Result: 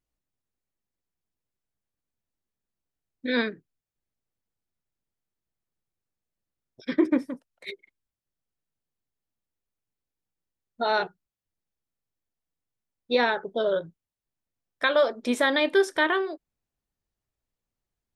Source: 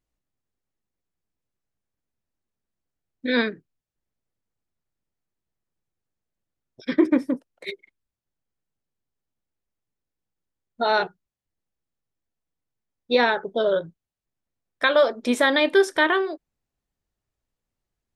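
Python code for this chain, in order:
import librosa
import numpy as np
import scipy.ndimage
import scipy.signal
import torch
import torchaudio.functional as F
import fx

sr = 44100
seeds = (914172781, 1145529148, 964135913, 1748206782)

y = fx.peak_eq(x, sr, hz=360.0, db=-9.0, octaves=1.5, at=(7.25, 7.7))
y = y * 10.0 ** (-3.5 / 20.0)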